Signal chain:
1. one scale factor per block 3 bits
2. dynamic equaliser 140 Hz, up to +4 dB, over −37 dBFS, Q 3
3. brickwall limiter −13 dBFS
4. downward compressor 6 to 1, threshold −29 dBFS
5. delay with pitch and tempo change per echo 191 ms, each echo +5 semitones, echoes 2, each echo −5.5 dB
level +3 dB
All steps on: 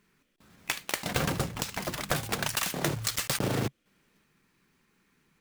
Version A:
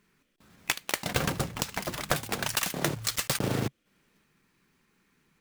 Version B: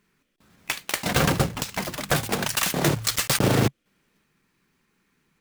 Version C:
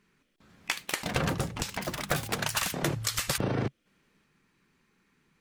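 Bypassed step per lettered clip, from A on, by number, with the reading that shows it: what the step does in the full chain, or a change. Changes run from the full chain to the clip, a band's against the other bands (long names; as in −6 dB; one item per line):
3, average gain reduction 2.0 dB
4, average gain reduction 5.0 dB
1, distortion level −8 dB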